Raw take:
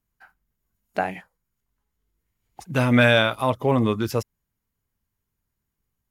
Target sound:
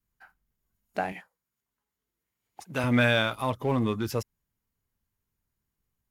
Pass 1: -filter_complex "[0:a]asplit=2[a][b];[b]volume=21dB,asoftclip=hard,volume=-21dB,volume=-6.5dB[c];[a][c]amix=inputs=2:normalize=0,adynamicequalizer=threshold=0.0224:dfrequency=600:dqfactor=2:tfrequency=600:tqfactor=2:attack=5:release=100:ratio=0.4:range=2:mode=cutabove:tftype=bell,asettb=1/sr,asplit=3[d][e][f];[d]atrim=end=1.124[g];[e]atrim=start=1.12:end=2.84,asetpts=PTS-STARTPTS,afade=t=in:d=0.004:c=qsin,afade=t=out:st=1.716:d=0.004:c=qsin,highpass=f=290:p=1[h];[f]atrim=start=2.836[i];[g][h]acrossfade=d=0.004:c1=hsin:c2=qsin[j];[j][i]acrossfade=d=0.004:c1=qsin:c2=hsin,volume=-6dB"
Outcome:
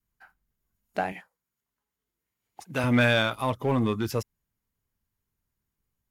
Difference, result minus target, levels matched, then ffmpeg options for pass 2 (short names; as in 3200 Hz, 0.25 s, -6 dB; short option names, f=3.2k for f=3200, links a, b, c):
overloaded stage: distortion -4 dB
-filter_complex "[0:a]asplit=2[a][b];[b]volume=32dB,asoftclip=hard,volume=-32dB,volume=-6.5dB[c];[a][c]amix=inputs=2:normalize=0,adynamicequalizer=threshold=0.0224:dfrequency=600:dqfactor=2:tfrequency=600:tqfactor=2:attack=5:release=100:ratio=0.4:range=2:mode=cutabove:tftype=bell,asettb=1/sr,asplit=3[d][e][f];[d]atrim=end=1.124[g];[e]atrim=start=1.12:end=2.84,asetpts=PTS-STARTPTS,afade=t=in:d=0.004:c=qsin,afade=t=out:st=1.716:d=0.004:c=qsin,highpass=f=290:p=1[h];[f]atrim=start=2.836[i];[g][h]acrossfade=d=0.004:c1=hsin:c2=qsin[j];[j][i]acrossfade=d=0.004:c1=qsin:c2=hsin,volume=-6dB"